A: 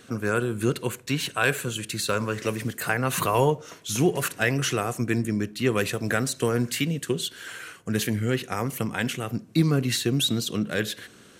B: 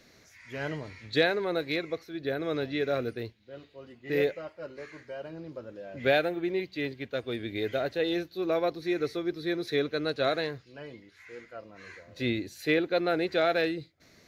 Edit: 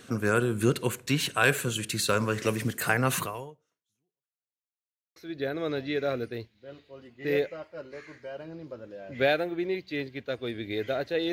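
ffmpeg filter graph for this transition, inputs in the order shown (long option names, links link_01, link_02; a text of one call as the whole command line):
ffmpeg -i cue0.wav -i cue1.wav -filter_complex "[0:a]apad=whole_dur=11.32,atrim=end=11.32,asplit=2[link_01][link_02];[link_01]atrim=end=4.61,asetpts=PTS-STARTPTS,afade=type=out:start_time=3.13:duration=1.48:curve=exp[link_03];[link_02]atrim=start=4.61:end=5.16,asetpts=PTS-STARTPTS,volume=0[link_04];[1:a]atrim=start=2.01:end=8.17,asetpts=PTS-STARTPTS,afade=type=in:duration=0.004:curve=hsin[link_05];[link_03][link_04][link_05]concat=n=3:v=0:a=1" out.wav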